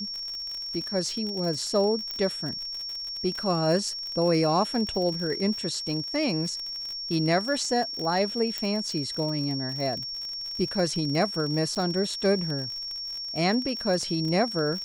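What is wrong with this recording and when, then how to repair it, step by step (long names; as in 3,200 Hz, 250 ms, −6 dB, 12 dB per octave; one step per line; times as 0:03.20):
surface crackle 55 per second −32 dBFS
whistle 5,500 Hz −32 dBFS
0:02.11: click −18 dBFS
0:08.58: click −15 dBFS
0:11.75–0:11.76: drop-out 7.7 ms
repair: click removal
notch filter 5,500 Hz, Q 30
repair the gap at 0:11.75, 7.7 ms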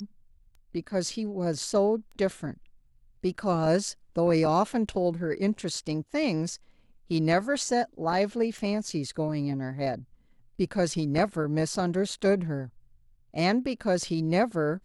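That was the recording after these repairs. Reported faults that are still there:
0:02.11: click
0:08.58: click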